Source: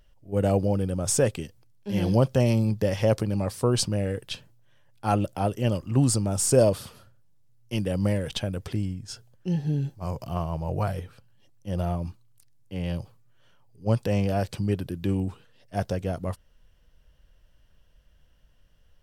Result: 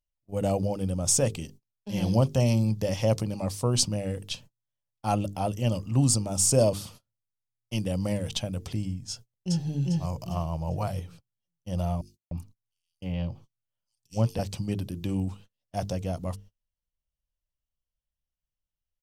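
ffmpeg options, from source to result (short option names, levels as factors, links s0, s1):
-filter_complex "[0:a]asplit=2[s0][s1];[s1]afade=t=in:st=9.1:d=0.01,afade=t=out:st=9.65:d=0.01,aecho=0:1:400|800|1200|1600|2000:1|0.35|0.1225|0.042875|0.0150062[s2];[s0][s2]amix=inputs=2:normalize=0,asettb=1/sr,asplit=3[s3][s4][s5];[s3]atrim=end=12.014[s6];[s4]atrim=start=12.01:end=14.39,asetpts=PTS-STARTPTS,afade=t=in:d=0.004:c=qsin,afade=t=out:st=2.376:d=0.004:c=qsin,acrossover=split=4000[s7][s8];[s7]adelay=300[s9];[s9][s8]amix=inputs=2:normalize=0,atrim=end_sample=104958[s10];[s5]atrim=start=14.386[s11];[s6][s10]acrossfade=d=0.004:c1=hsin:c2=qsin[s12];[s12][s11]acrossfade=d=0.004:c1=qsin:c2=hsin,bandreject=f=50:t=h:w=6,bandreject=f=100:t=h:w=6,bandreject=f=150:t=h:w=6,bandreject=f=200:t=h:w=6,bandreject=f=250:t=h:w=6,bandreject=f=300:t=h:w=6,bandreject=f=350:t=h:w=6,bandreject=f=400:t=h:w=6,bandreject=f=450:t=h:w=6,agate=range=0.0355:threshold=0.00501:ratio=16:detection=peak,equalizer=f=400:t=o:w=0.67:g=-7,equalizer=f=1600:t=o:w=0.67:g=-9,equalizer=f=6300:t=o:w=0.67:g=5"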